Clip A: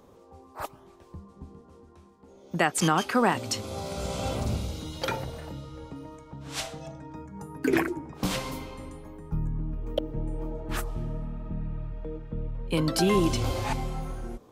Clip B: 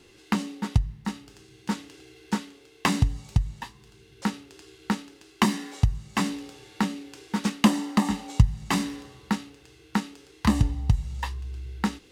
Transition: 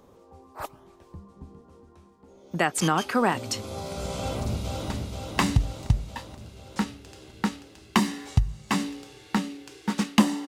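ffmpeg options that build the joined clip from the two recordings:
-filter_complex "[0:a]apad=whole_dur=10.47,atrim=end=10.47,atrim=end=4.902[a];[1:a]atrim=start=2.358:end=7.93[b];[a][b]acrossfade=d=0.004:c1=hsin:c2=hsin,asplit=2[c][d];[d]afade=t=in:st=4.16:d=0.01,afade=t=out:st=4.9:d=0.01,aecho=0:1:480|960|1440|1920|2400|2880|3360|3840|4320|4800:0.630957|0.410122|0.266579|0.173277|0.11263|0.0732094|0.0475861|0.030931|0.0201051|0.0130683[e];[c][e]amix=inputs=2:normalize=0"

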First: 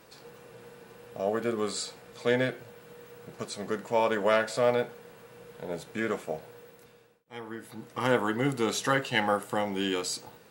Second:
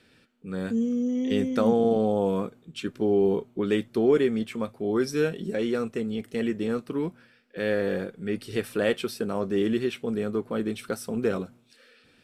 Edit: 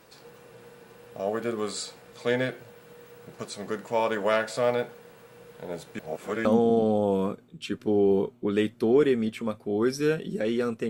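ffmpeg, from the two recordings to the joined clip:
-filter_complex "[0:a]apad=whole_dur=10.89,atrim=end=10.89,asplit=2[a][b];[a]atrim=end=5.992[c];[b]atrim=start=5.988:end=6.452,asetpts=PTS-STARTPTS,areverse[d];[1:a]atrim=start=1.588:end=6.03[e];[c][d]acrossfade=d=0.004:c1=hsin:c2=hsin[f];[f][e]acrossfade=d=0.004:c1=hsin:c2=hsin"

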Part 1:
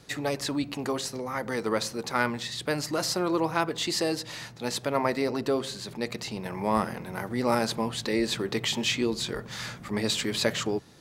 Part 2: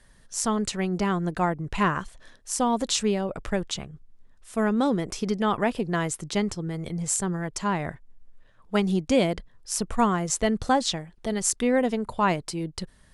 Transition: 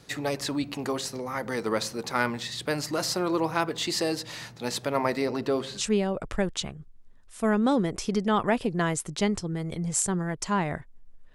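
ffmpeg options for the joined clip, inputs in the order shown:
-filter_complex "[0:a]asettb=1/sr,asplit=3[a][b][c];[a]atrim=end=5.254[d];[b]atrim=start=5.25:end=5.85,asetpts=PTS-STARTPTS,afade=t=in:d=0.004:c=qsin,afade=t=out:st=0.596:d=0.004:c=qsin,acrossover=split=4600[e][f];[f]acompressor=threshold=-50dB:ratio=4:attack=1:release=60[g];[e][g]amix=inputs=2:normalize=0[h];[c]atrim=start=5.846[i];[d][h]acrossfade=d=0.004:c1=hsin:c2=qsin[j];[j][i]acrossfade=d=0.004:c1=qsin:c2=hsin,apad=whole_dur=11.34,atrim=end=11.34,atrim=end=5.85,asetpts=PTS-STARTPTS[k];[1:a]atrim=start=2.91:end=8.48,asetpts=PTS-STARTPTS[l];[k][l]acrossfade=d=0.08:c1=tri:c2=tri"

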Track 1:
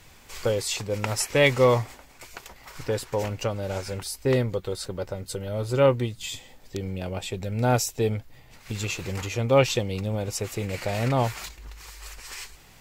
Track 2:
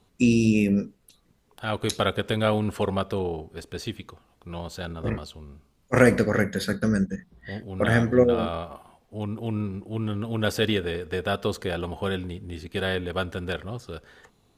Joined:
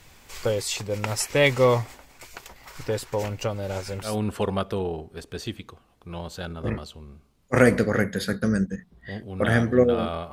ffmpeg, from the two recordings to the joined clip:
-filter_complex "[0:a]apad=whole_dur=10.32,atrim=end=10.32,atrim=end=4.2,asetpts=PTS-STARTPTS[a];[1:a]atrim=start=2.42:end=8.72,asetpts=PTS-STARTPTS[b];[a][b]acrossfade=d=0.18:c1=tri:c2=tri"

